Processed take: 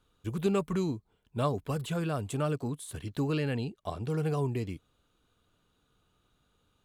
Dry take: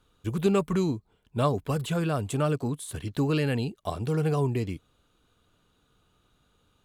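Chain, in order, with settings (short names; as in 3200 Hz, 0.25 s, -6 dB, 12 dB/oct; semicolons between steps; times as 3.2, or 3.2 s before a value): 3.35–4.1 high shelf 8800 Hz -9.5 dB; gain -4.5 dB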